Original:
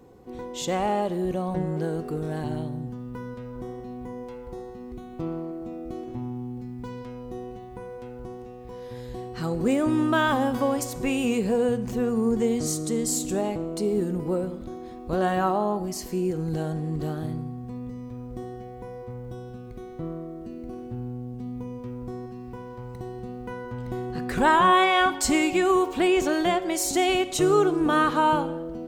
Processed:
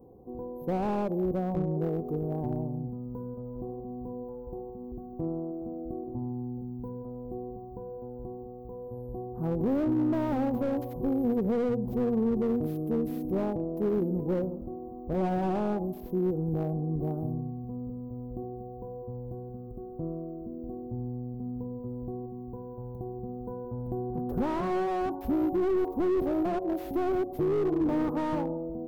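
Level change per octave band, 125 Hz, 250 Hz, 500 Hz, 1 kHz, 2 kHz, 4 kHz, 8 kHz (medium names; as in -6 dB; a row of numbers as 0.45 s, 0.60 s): -1.5 dB, -2.5 dB, -4.0 dB, -11.0 dB, -18.5 dB, under -20 dB, under -30 dB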